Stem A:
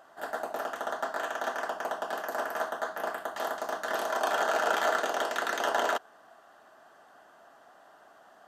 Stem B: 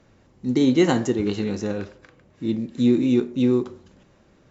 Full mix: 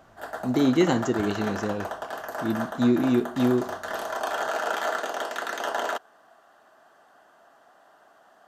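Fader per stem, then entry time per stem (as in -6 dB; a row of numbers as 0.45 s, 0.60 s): -0.5 dB, -3.0 dB; 0.00 s, 0.00 s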